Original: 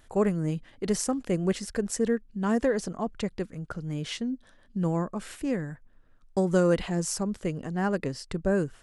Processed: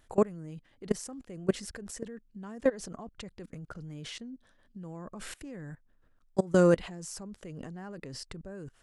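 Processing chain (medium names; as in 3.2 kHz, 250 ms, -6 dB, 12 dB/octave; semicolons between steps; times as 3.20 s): level held to a coarse grid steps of 22 dB; trim +2 dB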